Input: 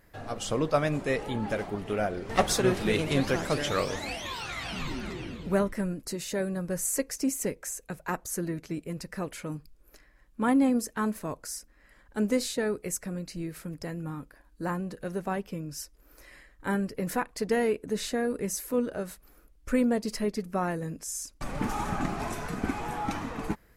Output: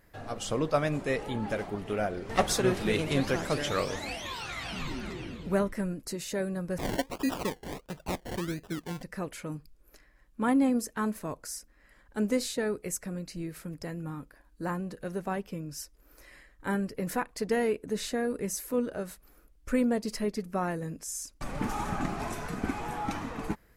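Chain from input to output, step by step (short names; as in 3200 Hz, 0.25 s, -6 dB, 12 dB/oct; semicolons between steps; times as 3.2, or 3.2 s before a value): 6.78–9.03 decimation with a swept rate 28×, swing 60% 1.5 Hz; gain -1.5 dB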